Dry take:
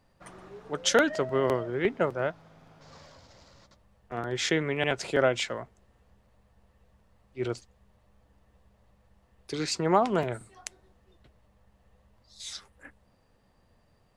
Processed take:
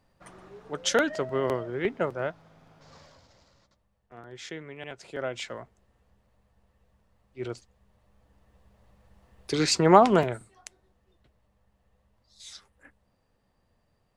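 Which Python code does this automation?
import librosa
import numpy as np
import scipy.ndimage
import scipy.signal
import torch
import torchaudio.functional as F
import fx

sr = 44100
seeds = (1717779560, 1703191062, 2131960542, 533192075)

y = fx.gain(x, sr, db=fx.line((2.98, -1.5), (4.17, -13.0), (5.02, -13.0), (5.55, -3.5), (7.54, -3.5), (9.62, 6.5), (10.13, 6.5), (10.53, -5.5)))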